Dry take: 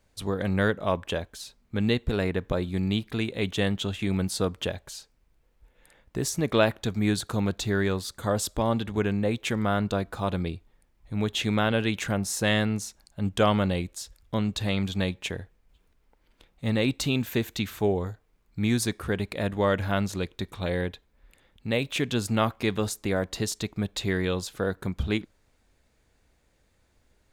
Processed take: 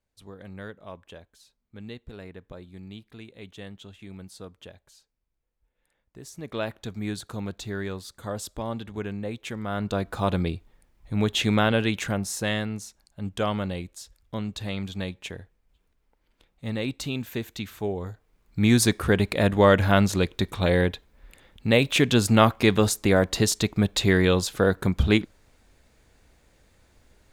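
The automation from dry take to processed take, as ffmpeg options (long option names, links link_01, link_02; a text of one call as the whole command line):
ffmpeg -i in.wav -af "volume=15dB,afade=type=in:start_time=6.24:duration=0.56:silence=0.354813,afade=type=in:start_time=9.66:duration=0.55:silence=0.316228,afade=type=out:start_time=11.52:duration=1.13:silence=0.398107,afade=type=in:start_time=17.96:duration=0.91:silence=0.266073" out.wav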